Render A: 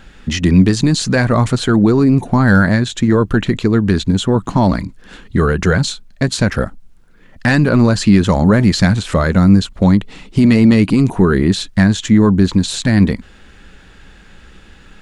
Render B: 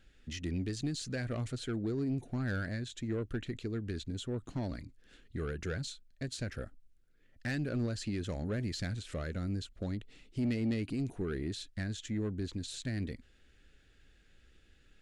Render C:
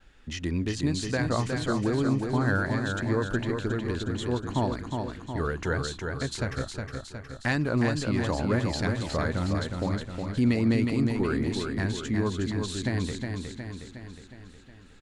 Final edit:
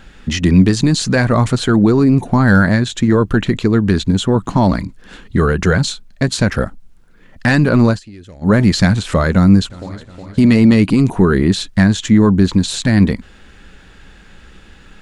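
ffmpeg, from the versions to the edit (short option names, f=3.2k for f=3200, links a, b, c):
-filter_complex "[0:a]asplit=3[a][b][c];[a]atrim=end=8[d];[1:a]atrim=start=7.9:end=8.51[e];[b]atrim=start=8.41:end=9.702[f];[2:a]atrim=start=9.698:end=10.382[g];[c]atrim=start=10.378[h];[d][e]acrossfade=d=0.1:c1=tri:c2=tri[i];[i][f]acrossfade=d=0.1:c1=tri:c2=tri[j];[j][g]acrossfade=d=0.004:c1=hsin:c2=hsin[k];[k][h]acrossfade=d=0.004:c1=hsin:c2=hsin"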